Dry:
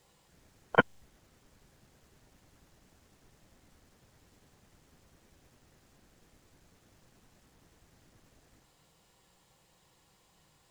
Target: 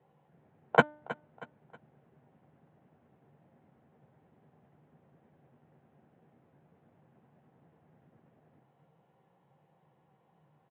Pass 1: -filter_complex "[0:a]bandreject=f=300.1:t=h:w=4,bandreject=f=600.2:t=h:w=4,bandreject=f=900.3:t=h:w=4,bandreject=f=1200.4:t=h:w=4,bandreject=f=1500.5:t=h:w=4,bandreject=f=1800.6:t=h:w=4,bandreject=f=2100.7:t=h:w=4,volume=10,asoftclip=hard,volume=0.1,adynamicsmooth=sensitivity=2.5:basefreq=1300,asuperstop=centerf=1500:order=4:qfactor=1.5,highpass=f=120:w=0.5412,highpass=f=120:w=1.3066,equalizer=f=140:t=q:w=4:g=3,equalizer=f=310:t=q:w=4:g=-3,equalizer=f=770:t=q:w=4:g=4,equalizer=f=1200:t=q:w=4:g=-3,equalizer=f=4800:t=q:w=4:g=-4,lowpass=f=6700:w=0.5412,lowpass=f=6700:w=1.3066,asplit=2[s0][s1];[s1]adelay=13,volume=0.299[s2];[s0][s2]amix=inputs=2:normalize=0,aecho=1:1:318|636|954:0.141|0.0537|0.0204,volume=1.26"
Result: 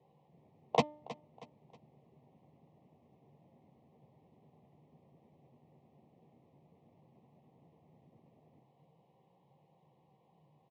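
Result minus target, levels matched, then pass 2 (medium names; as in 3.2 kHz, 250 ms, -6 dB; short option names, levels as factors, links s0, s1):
overload inside the chain: distortion +15 dB; 2 kHz band -9.0 dB
-filter_complex "[0:a]bandreject=f=300.1:t=h:w=4,bandreject=f=600.2:t=h:w=4,bandreject=f=900.3:t=h:w=4,bandreject=f=1200.4:t=h:w=4,bandreject=f=1500.5:t=h:w=4,bandreject=f=1800.6:t=h:w=4,bandreject=f=2100.7:t=h:w=4,volume=3.35,asoftclip=hard,volume=0.299,adynamicsmooth=sensitivity=2.5:basefreq=1300,asuperstop=centerf=5100:order=4:qfactor=1.5,highpass=f=120:w=0.5412,highpass=f=120:w=1.3066,equalizer=f=140:t=q:w=4:g=3,equalizer=f=310:t=q:w=4:g=-3,equalizer=f=770:t=q:w=4:g=4,equalizer=f=1200:t=q:w=4:g=-3,equalizer=f=4800:t=q:w=4:g=-4,lowpass=f=6700:w=0.5412,lowpass=f=6700:w=1.3066,asplit=2[s0][s1];[s1]adelay=13,volume=0.299[s2];[s0][s2]amix=inputs=2:normalize=0,aecho=1:1:318|636|954:0.141|0.0537|0.0204,volume=1.26"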